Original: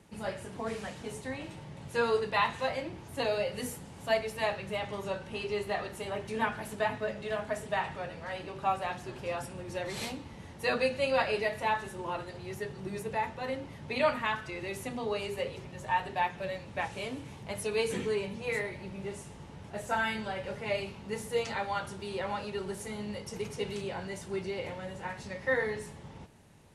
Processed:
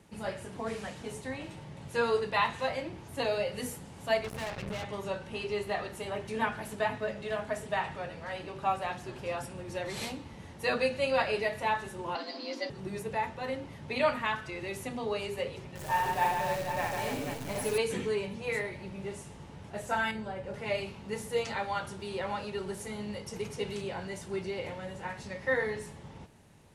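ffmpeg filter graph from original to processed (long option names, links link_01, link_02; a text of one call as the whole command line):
ffmpeg -i in.wav -filter_complex "[0:a]asettb=1/sr,asplit=3[link_01][link_02][link_03];[link_01]atrim=end=4.244[link_04];[link_02]atrim=start=4.24:end=4.84,asetpts=PTS-STARTPTS,afade=type=in:duration=0.004:curve=qsin,afade=type=out:start_time=0.596:duration=0.004:curve=qsin,bass=frequency=250:gain=9,treble=frequency=4000:gain=-5,acompressor=threshold=-35dB:ratio=3:attack=3.2:release=140:knee=1:detection=peak,acrusher=bits=5:mix=0:aa=0.5[link_05];[link_03]atrim=start=4.836[link_06];[link_04][link_05]acrossfade=duration=0.004:curve1=hsin:curve2=qsin[link_07];[link_07][link_06]acrossfade=duration=0.004:curve1=qsin:curve2=hsin,asettb=1/sr,asplit=3[link_08][link_09][link_10];[link_08]atrim=end=12.154[link_11];[link_09]atrim=start=12.15:end=12.7,asetpts=PTS-STARTPTS,afade=type=in:duration=0.004:curve=qsin,afade=type=out:start_time=0.546:duration=0.004:curve=qsin,lowpass=frequency=4500:width_type=q:width=6.4,afreqshift=150,aecho=1:1:7.5:0.31,atrim=end_sample=24255[link_12];[link_10]atrim=start=12.696[link_13];[link_11][link_12]acrossfade=duration=0.004:curve1=hsin:curve2=qsin[link_14];[link_14][link_13]acrossfade=duration=0.004:curve1=qsin:curve2=hsin,asettb=1/sr,asplit=3[link_15][link_16][link_17];[link_15]atrim=end=15.754[link_18];[link_16]atrim=start=15.75:end=17.78,asetpts=PTS-STARTPTS,afade=type=in:duration=0.004:curve=qsin,afade=type=out:start_time=2.026:duration=0.004:curve=qsin,equalizer=frequency=3300:width=0.79:gain=-4.5,acrusher=bits=8:dc=4:mix=0:aa=0.000001,aecho=1:1:60|150|285|487.5|791.2:0.794|0.631|0.501|0.398|0.316,atrim=end_sample=89523[link_19];[link_17]atrim=start=17.776[link_20];[link_18][link_19]acrossfade=duration=0.004:curve1=hsin:curve2=qsin[link_21];[link_21][link_20]acrossfade=duration=0.004:curve1=qsin:curve2=hsin,asettb=1/sr,asplit=3[link_22][link_23][link_24];[link_22]atrim=end=20.114[link_25];[link_23]atrim=start=20.11:end=20.54,asetpts=PTS-STARTPTS,afade=type=in:duration=0.004:curve=qsin,afade=type=out:start_time=0.426:duration=0.004:curve=qsin,lowpass=frequency=9300:width=0.5412,lowpass=frequency=9300:width=1.3066,equalizer=frequency=3400:width_type=o:width=2.8:gain=-10[link_26];[link_24]atrim=start=20.536[link_27];[link_25][link_26]acrossfade=duration=0.004:curve1=hsin:curve2=qsin[link_28];[link_28][link_27]acrossfade=duration=0.004:curve1=qsin:curve2=hsin" out.wav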